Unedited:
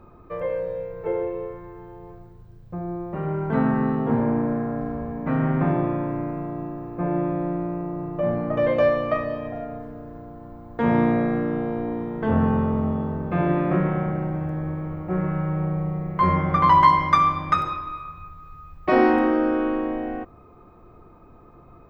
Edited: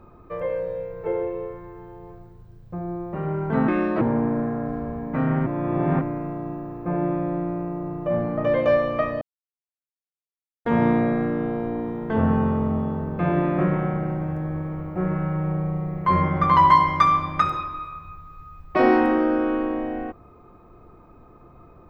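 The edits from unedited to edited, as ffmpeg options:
-filter_complex "[0:a]asplit=7[s0][s1][s2][s3][s4][s5][s6];[s0]atrim=end=3.684[s7];[s1]atrim=start=3.68:end=4.14,asetpts=PTS-STARTPTS,asetrate=60858,aresample=44100,atrim=end_sample=14700,asetpts=PTS-STARTPTS[s8];[s2]atrim=start=4.136:end=5.592[s9];[s3]atrim=start=5.588:end=6.142,asetpts=PTS-STARTPTS,areverse[s10];[s4]atrim=start=6.138:end=9.34,asetpts=PTS-STARTPTS,afade=t=out:st=3.198:d=0.004:c=hsin[s11];[s5]atrim=start=9.34:end=10.78,asetpts=PTS-STARTPTS,volume=0[s12];[s6]atrim=start=10.78,asetpts=PTS-STARTPTS,afade=t=in:d=0.004:c=hsin[s13];[s7][s8]acrossfade=d=0.004:c1=hsin:c2=hsin[s14];[s14][s9]acrossfade=d=0.004:c1=hsin:c2=hsin[s15];[s15][s10]acrossfade=d=0.004:c1=hsin:c2=hsin[s16];[s11][s12][s13]concat=n=3:v=0:a=1[s17];[s16][s17]acrossfade=d=0.004:c1=hsin:c2=hsin"

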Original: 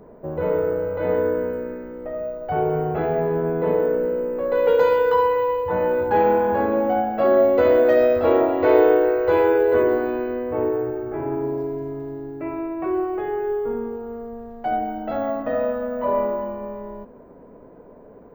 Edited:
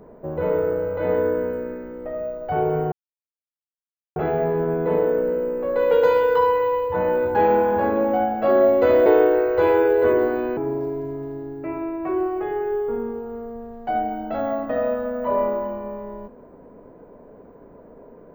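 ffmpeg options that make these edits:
-filter_complex "[0:a]asplit=4[s0][s1][s2][s3];[s0]atrim=end=2.92,asetpts=PTS-STARTPTS,afade=t=out:st=2.916:d=0.004:c=hsin,apad=pad_dur=1.24[s4];[s1]atrim=start=2.92:end=7.822,asetpts=PTS-STARTPTS,afade=t=in:d=0.004:c=hsin[s5];[s2]atrim=start=8.758:end=10.272[s6];[s3]atrim=start=11.338[s7];[s4][s5]concat=n=2:v=0:a=1[s8];[s8][s6]acrossfade=d=0.004:c1=hsin:c2=hsin[s9];[s9][s7]acrossfade=d=0.004:c1=hsin:c2=hsin"

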